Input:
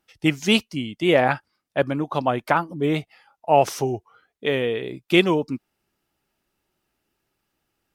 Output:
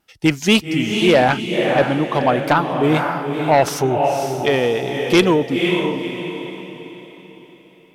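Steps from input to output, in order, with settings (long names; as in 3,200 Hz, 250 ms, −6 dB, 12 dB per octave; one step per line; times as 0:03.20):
pitch vibrato 1.3 Hz 14 cents
feedback delay with all-pass diffusion 514 ms, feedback 40%, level −5.5 dB
harmonic generator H 5 −9 dB, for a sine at −0.5 dBFS
level −3 dB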